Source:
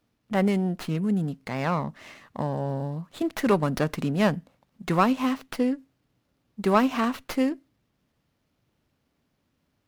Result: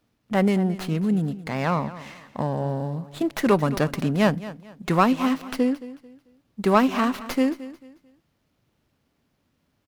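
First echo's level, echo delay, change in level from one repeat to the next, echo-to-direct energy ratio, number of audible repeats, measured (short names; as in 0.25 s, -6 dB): -16.0 dB, 0.221 s, -10.5 dB, -15.5 dB, 2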